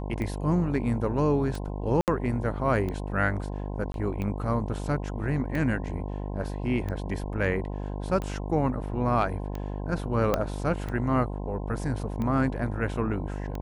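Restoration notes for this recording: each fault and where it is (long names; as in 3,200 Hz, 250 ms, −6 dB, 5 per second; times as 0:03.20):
mains buzz 50 Hz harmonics 21 −33 dBFS
scratch tick 45 rpm −21 dBFS
0:02.01–0:02.08: drop-out 68 ms
0:03.92–0:03.94: drop-out 22 ms
0:10.34: click −10 dBFS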